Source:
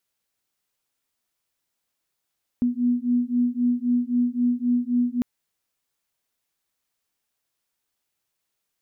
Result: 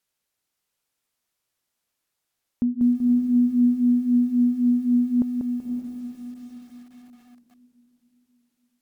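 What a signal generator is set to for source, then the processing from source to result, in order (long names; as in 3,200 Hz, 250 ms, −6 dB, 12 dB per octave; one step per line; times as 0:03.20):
two tones that beat 242 Hz, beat 3.8 Hz, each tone −22.5 dBFS 2.60 s
treble cut that deepens with the level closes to 530 Hz, closed at −18.5 dBFS
feedback delay with all-pass diffusion 535 ms, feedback 44%, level −8.5 dB
feedback echo at a low word length 191 ms, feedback 35%, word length 9 bits, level −5 dB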